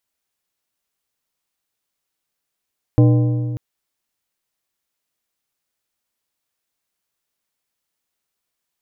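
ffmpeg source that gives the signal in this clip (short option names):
-f lavfi -i "aevalsrc='0.398*pow(10,-3*t/2.31)*sin(2*PI*121*t)+0.2*pow(10,-3*t/1.755)*sin(2*PI*302.5*t)+0.1*pow(10,-3*t/1.524)*sin(2*PI*484*t)+0.0501*pow(10,-3*t/1.425)*sin(2*PI*605*t)+0.0251*pow(10,-3*t/1.317)*sin(2*PI*786.5*t)+0.0126*pow(10,-3*t/1.216)*sin(2*PI*1028.5*t)':d=0.59:s=44100"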